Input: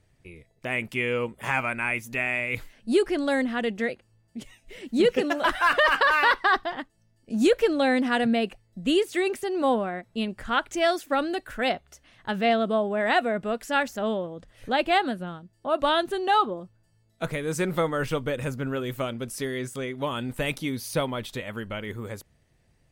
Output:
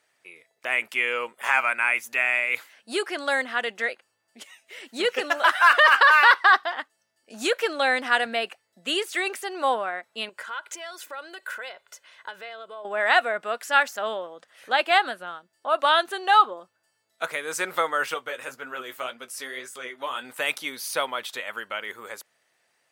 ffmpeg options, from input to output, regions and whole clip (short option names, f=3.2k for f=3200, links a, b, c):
-filter_complex "[0:a]asettb=1/sr,asplit=3[a][b][c];[a]atrim=end=10.294[d];[b]atrim=start=10.29:end=12.85,asetpts=PTS-STARTPTS,afade=t=in:d=0.004:c=qsin,afade=t=out:st=2.556:d=0.004:c=qsin,acompressor=threshold=-35dB:ratio=12:attack=3.2:release=140:knee=1:detection=peak,aecho=1:1:2:0.55,atrim=end_sample=112896[e];[c]atrim=start=12.846[f];[d][e]acrossfade=d=0.004:c1=hsin:c2=qsin[g];[g][f]acrossfade=d=0.004:c1=qsin:c2=hsin,asettb=1/sr,asplit=3[h][i][j];[h]atrim=end=18.144[k];[i]atrim=start=18.14:end=20.25,asetpts=PTS-STARTPTS,afade=t=in:d=0.004:c=qsin,afade=t=out:st=2.106:d=0.004:c=qsin,flanger=delay=4:depth=7.3:regen=41:speed=1.9:shape=sinusoidal,asplit=2[l][m];[m]adelay=16,volume=-12.5dB[n];[l][n]amix=inputs=2:normalize=0,atrim=end_sample=93051[o];[j]atrim=start=20.246[p];[k][o]acrossfade=d=0.004:c1=hsin:c2=qsin[q];[q][p]acrossfade=d=0.004:c1=qsin:c2=hsin,highpass=730,equalizer=f=1.4k:t=o:w=0.6:g=3.5,volume=4dB"